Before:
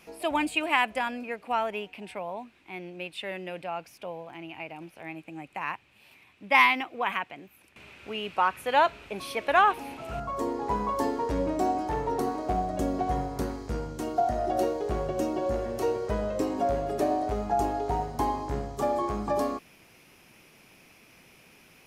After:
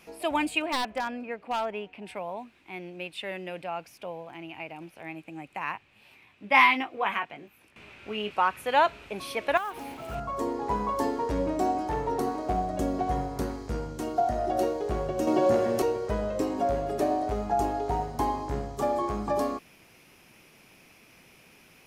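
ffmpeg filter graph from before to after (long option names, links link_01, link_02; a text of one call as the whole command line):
ffmpeg -i in.wav -filter_complex "[0:a]asettb=1/sr,asplit=3[link_01][link_02][link_03];[link_01]atrim=end=0.624[link_04];[link_02]atrim=start=0.62:end=2.06,asetpts=PTS-STARTPTS,afade=type=in:duration=0.004:curve=qsin,afade=type=out:start_time=1.436:duration=0.004:curve=qsin,lowpass=frequency=2100:poles=1,aeval=exprs='0.0841*(abs(mod(val(0)/0.0841+3,4)-2)-1)':channel_layout=same[link_05];[link_03]atrim=start=2.056[link_06];[link_04][link_05]acrossfade=duration=0.004:curve1=hsin:curve2=qsin[link_07];[link_07][link_06]acrossfade=duration=0.004:curve1=qsin:curve2=hsin,asettb=1/sr,asplit=3[link_08][link_09][link_10];[link_08]atrim=end=5.734[link_11];[link_09]atrim=start=5.73:end=8.31,asetpts=PTS-STARTPTS,afade=type=in:duration=0.004:curve=qsin,afade=type=out:start_time=2.576:duration=0.004:curve=qsin,highshelf=frequency=6200:gain=-6.5,asplit=2[link_12][link_13];[link_13]adelay=19,volume=-6dB[link_14];[link_12][link_14]amix=inputs=2:normalize=0,atrim=end_sample=113778[link_15];[link_10]atrim=start=8.306[link_16];[link_11][link_15]acrossfade=duration=0.004:curve1=hsin:curve2=qsin[link_17];[link_17][link_16]acrossfade=duration=0.004:curve1=qsin:curve2=hsin,asettb=1/sr,asplit=3[link_18][link_19][link_20];[link_18]atrim=end=9.574[link_21];[link_19]atrim=start=9.57:end=10.15,asetpts=PTS-STARTPTS,afade=type=in:duration=0.004:curve=qsin,afade=type=out:start_time=0.576:duration=0.004:curve=qsin,acrusher=bits=5:mode=log:mix=0:aa=0.000001,acompressor=threshold=-29dB:ratio=8:attack=3.2:release=140:knee=1:detection=peak,bandreject=frequency=2600:width=20[link_22];[link_20]atrim=start=10.146[link_23];[link_21][link_22]acrossfade=duration=0.004:curve1=hsin:curve2=qsin[link_24];[link_24][link_23]acrossfade=duration=0.004:curve1=qsin:curve2=hsin,asettb=1/sr,asplit=3[link_25][link_26][link_27];[link_25]atrim=end=15.274[link_28];[link_26]atrim=start=15.27:end=15.82,asetpts=PTS-STARTPTS,afade=type=in:duration=0.004:curve=qsin,afade=type=out:start_time=0.546:duration=0.004:curve=qsin,highpass=frequency=110:width=0.5412,highpass=frequency=110:width=1.3066,acontrast=73[link_29];[link_27]atrim=start=15.816[link_30];[link_28][link_29]acrossfade=duration=0.004:curve1=hsin:curve2=qsin[link_31];[link_31][link_30]acrossfade=duration=0.004:curve1=qsin:curve2=hsin" out.wav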